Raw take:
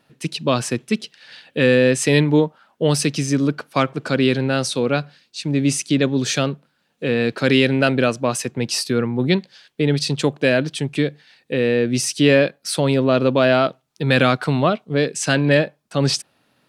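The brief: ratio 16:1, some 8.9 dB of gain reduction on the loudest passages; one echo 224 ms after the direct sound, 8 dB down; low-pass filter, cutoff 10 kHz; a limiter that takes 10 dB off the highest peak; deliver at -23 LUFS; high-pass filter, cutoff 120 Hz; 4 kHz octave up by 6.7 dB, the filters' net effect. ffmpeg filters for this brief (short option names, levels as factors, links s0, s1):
-af "highpass=120,lowpass=10000,equalizer=f=4000:t=o:g=8.5,acompressor=threshold=0.126:ratio=16,alimiter=limit=0.141:level=0:latency=1,aecho=1:1:224:0.398,volume=1.58"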